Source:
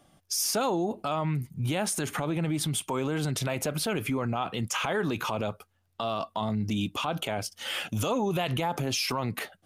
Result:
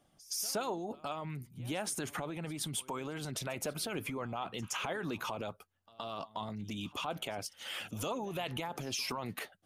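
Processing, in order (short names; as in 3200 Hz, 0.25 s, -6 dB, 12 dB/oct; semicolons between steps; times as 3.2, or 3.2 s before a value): reverse echo 0.119 s -19.5 dB; harmonic-percussive split harmonic -7 dB; gain -6 dB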